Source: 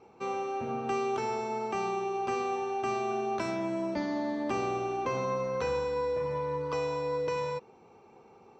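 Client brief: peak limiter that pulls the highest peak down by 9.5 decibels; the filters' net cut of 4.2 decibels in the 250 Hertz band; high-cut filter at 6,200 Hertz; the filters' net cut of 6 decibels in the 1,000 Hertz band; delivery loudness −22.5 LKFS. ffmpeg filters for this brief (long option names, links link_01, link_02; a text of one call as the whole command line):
ffmpeg -i in.wav -af "lowpass=6200,equalizer=frequency=250:width_type=o:gain=-5.5,equalizer=frequency=1000:width_type=o:gain=-7.5,volume=17dB,alimiter=limit=-14.5dB:level=0:latency=1" out.wav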